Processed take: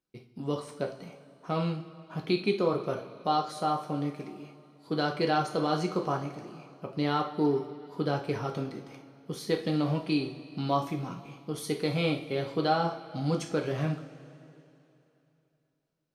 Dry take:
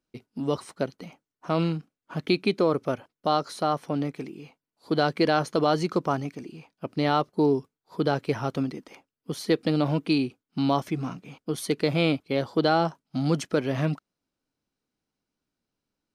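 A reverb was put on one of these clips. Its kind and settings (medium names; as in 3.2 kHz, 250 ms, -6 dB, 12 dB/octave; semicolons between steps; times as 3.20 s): two-slope reverb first 0.39 s, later 3 s, from -18 dB, DRR 1.5 dB; trim -6.5 dB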